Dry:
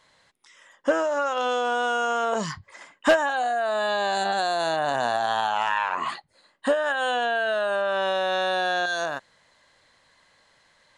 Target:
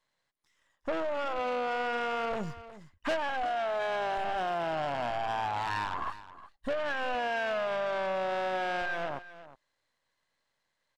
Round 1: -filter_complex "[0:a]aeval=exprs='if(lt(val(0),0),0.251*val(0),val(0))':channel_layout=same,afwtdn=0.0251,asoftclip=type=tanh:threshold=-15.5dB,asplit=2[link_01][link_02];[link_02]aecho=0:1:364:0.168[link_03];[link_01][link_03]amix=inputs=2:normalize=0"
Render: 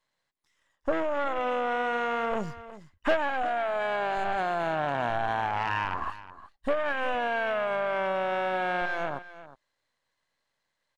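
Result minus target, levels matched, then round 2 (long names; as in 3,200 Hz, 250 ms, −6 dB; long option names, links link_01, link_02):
soft clipping: distortion −11 dB
-filter_complex "[0:a]aeval=exprs='if(lt(val(0),0),0.251*val(0),val(0))':channel_layout=same,afwtdn=0.0251,asoftclip=type=tanh:threshold=-26dB,asplit=2[link_01][link_02];[link_02]aecho=0:1:364:0.168[link_03];[link_01][link_03]amix=inputs=2:normalize=0"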